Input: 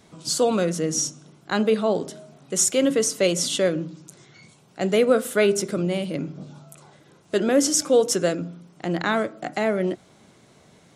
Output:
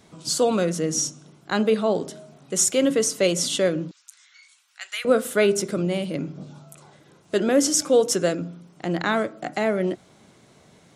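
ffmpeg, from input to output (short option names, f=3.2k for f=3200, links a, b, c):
-filter_complex "[0:a]asettb=1/sr,asplit=3[a][b][c];[a]atrim=end=3.914[d];[b]atrim=start=3.91:end=5.05,asetpts=PTS-STARTPTS,afade=t=in:d=0.004:c=qsin,afade=t=out:st=1.136:d=0.004:c=qsin,highpass=f=1.4k:w=0.5412,highpass=f=1.4k:w=1.3066[e];[c]atrim=start=5.046[f];[d][e]acrossfade=d=0.004:c1=hsin:c2=qsin[g];[g][f]acrossfade=d=0.004:c1=qsin:c2=hsin"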